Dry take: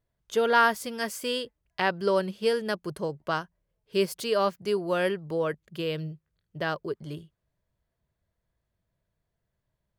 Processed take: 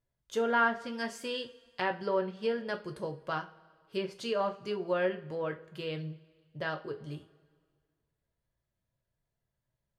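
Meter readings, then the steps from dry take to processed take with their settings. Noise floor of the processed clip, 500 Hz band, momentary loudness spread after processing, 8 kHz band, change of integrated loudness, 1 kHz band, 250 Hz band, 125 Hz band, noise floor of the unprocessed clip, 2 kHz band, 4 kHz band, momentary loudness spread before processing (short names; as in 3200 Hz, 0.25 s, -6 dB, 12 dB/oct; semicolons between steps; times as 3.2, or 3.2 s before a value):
under -85 dBFS, -6.0 dB, 13 LU, under -10 dB, -5.5 dB, -5.5 dB, -5.0 dB, -5.5 dB, -82 dBFS, -5.0 dB, -7.5 dB, 12 LU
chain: treble ducked by the level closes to 2300 Hz, closed at -21 dBFS; two-slope reverb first 0.28 s, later 1.8 s, from -21 dB, DRR 4 dB; gain -6.5 dB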